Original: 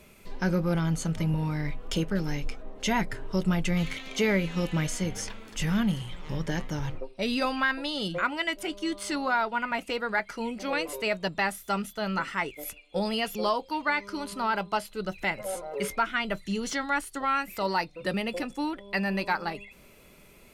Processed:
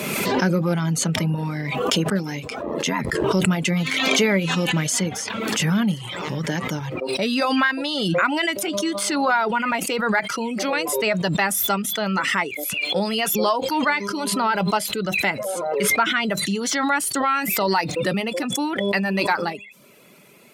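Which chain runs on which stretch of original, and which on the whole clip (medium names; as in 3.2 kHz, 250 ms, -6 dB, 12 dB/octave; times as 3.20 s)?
2.59–3.24 s: ring modulator 43 Hz + comb of notches 750 Hz
whole clip: reverb removal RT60 0.55 s; high-pass 130 Hz 24 dB/octave; swell ahead of each attack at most 25 dB/s; trim +6 dB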